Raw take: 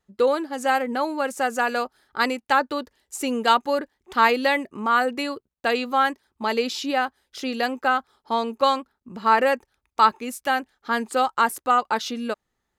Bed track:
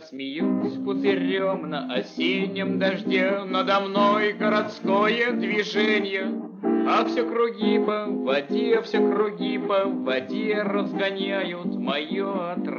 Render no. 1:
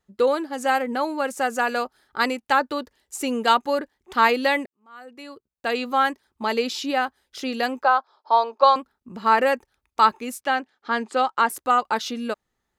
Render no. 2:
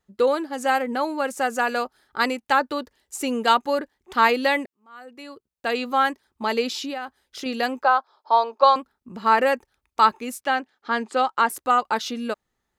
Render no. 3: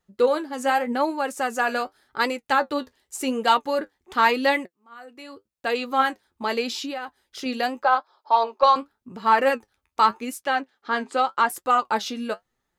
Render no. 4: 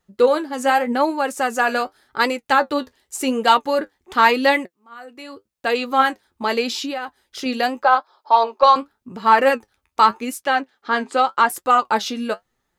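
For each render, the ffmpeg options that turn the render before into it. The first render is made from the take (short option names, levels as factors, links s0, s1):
-filter_complex "[0:a]asettb=1/sr,asplit=3[s0][s1][s2];[s0]atrim=end=7.834[s3];[s1]atrim=start=7.83:end=8.76,asetpts=PTS-STARTPTS,afade=t=in:d=0.004:c=qsin,afade=t=out:st=0.926:d=0.004:c=qsin,highpass=f=370:w=0.5412,highpass=f=370:w=1.3066,equalizer=f=420:t=q:w=4:g=-3,equalizer=f=630:t=q:w=4:g=7,equalizer=f=980:t=q:w=4:g=9,equalizer=f=2000:t=q:w=4:g=-7,equalizer=f=2900:t=q:w=4:g=-6,equalizer=f=4800:t=q:w=4:g=5,lowpass=f=5100:w=0.5412,lowpass=f=5100:w=1.3066[s4];[s2]atrim=start=8.756[s5];[s3][s4]acrossfade=d=0.004:c1=hsin:c2=qsin[s6];[s6][s5]acrossfade=d=0.004:c1=qsin:c2=hsin,asettb=1/sr,asplit=3[s7][s8][s9];[s7]atrim=end=10.414[s10];[s8]atrim=start=10.41:end=11.5,asetpts=PTS-STARTPTS,afade=t=in:d=0.004:c=qsin,afade=t=out:st=1.086:d=0.004:c=qsin,highpass=180,lowpass=5500[s11];[s9]atrim=start=11.496[s12];[s10][s11]acrossfade=d=0.004:c1=hsin:c2=qsin[s13];[s13][s12]acrossfade=d=0.004:c1=qsin:c2=hsin,asplit=2[s14][s15];[s14]atrim=end=4.66,asetpts=PTS-STARTPTS,afade=t=out:st=4.656:d=0.004:c=hsin[s16];[s15]atrim=start=4.66,asetpts=PTS-STARTPTS,afade=t=in:d=1.2:c=qua[s17];[s16][s17]concat=n=2:v=0:a=1"
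-filter_complex "[0:a]asettb=1/sr,asplit=3[s0][s1][s2];[s0]atrim=end=6.784[s3];[s1]atrim=start=6.78:end=7.46,asetpts=PTS-STARTPTS,afade=t=in:d=0.004:c=qsin,afade=t=out:st=0.676:d=0.004:c=qsin,acompressor=threshold=0.0447:ratio=6:attack=3.2:release=140:knee=1:detection=peak[s4];[s2]atrim=start=7.456[s5];[s3][s4]acrossfade=d=0.004:c1=hsin:c2=qsin[s6];[s6][s5]acrossfade=d=0.004:c1=qsin:c2=hsin"
-filter_complex "[0:a]flanger=delay=5.3:depth=6.9:regen=55:speed=0.86:shape=triangular,asplit=2[s0][s1];[s1]asoftclip=type=tanh:threshold=0.2,volume=0.531[s2];[s0][s2]amix=inputs=2:normalize=0"
-af "volume=1.68,alimiter=limit=0.794:level=0:latency=1"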